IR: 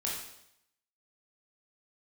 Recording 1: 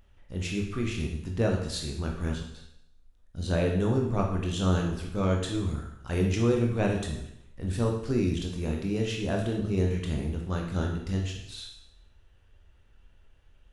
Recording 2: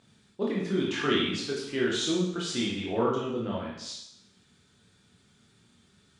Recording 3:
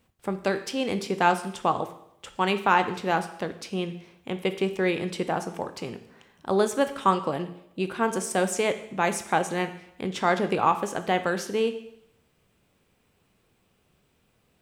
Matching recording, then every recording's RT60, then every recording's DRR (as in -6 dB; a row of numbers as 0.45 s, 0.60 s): 2; 0.75 s, 0.75 s, 0.75 s; 0.0 dB, -4.5 dB, 9.0 dB